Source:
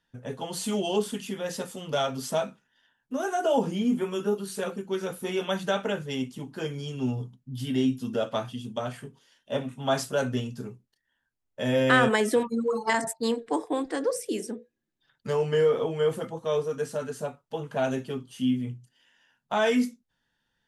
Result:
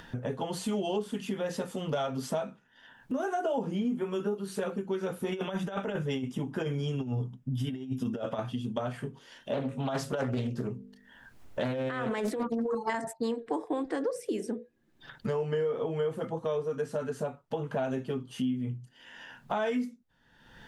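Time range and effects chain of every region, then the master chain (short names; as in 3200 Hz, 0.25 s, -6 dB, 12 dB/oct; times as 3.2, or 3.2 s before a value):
5.32–8.39 negative-ratio compressor -31 dBFS, ratio -0.5 + Butterworth band-stop 4300 Hz, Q 5.9
9.53–12.75 de-hum 49.67 Hz, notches 11 + negative-ratio compressor -28 dBFS + Doppler distortion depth 0.38 ms
whole clip: upward compressor, threshold -26 dBFS; high shelf 3200 Hz -11 dB; compressor, threshold -27 dBFS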